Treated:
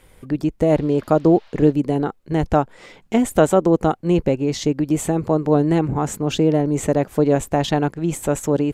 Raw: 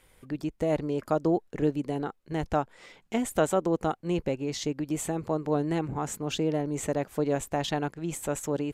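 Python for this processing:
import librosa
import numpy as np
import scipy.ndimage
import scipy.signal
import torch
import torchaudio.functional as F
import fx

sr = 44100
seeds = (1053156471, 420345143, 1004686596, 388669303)

y = fx.dmg_noise_band(x, sr, seeds[0], low_hz=580.0, high_hz=4300.0, level_db=-62.0, at=(0.68, 1.71), fade=0.02)
y = fx.tilt_shelf(y, sr, db=3.0, hz=780.0)
y = y * librosa.db_to_amplitude(9.0)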